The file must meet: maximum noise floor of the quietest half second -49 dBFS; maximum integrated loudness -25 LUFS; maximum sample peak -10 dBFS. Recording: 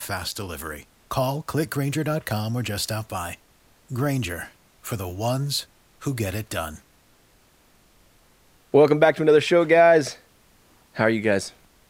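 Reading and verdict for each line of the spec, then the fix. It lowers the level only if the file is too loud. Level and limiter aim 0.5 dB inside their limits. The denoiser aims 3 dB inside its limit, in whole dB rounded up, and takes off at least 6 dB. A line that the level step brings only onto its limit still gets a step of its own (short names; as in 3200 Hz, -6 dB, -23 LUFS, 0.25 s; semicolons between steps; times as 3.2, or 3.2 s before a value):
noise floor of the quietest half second -58 dBFS: OK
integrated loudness -23.0 LUFS: fail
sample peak -4.5 dBFS: fail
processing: gain -2.5 dB; limiter -10.5 dBFS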